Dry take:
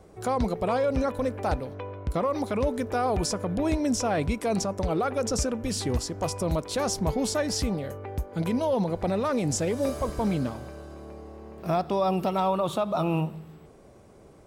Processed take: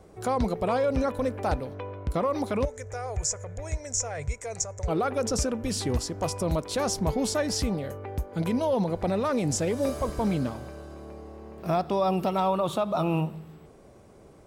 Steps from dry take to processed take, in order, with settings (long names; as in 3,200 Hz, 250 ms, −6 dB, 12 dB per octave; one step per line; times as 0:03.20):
0:02.65–0:04.88: drawn EQ curve 130 Hz 0 dB, 190 Hz −24 dB, 320 Hz −22 dB, 460 Hz −7 dB, 1,100 Hz −12 dB, 2,100 Hz −2 dB, 2,900 Hz −14 dB, 4,500 Hz −12 dB, 6,900 Hz +10 dB, 11,000 Hz −14 dB